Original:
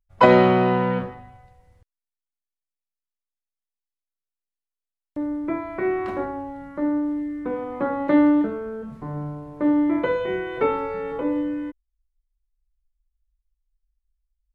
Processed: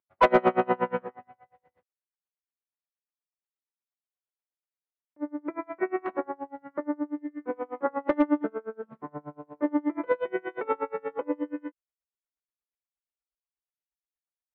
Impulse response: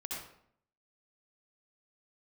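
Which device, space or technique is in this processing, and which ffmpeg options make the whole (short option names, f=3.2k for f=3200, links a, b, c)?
helicopter radio: -af "highpass=340,lowpass=2.7k,aeval=exprs='val(0)*pow(10,-31*(0.5-0.5*cos(2*PI*8.4*n/s))/20)':c=same,asoftclip=type=hard:threshold=-15dB,bass=f=250:g=1,treble=f=4k:g=-13,volume=2.5dB"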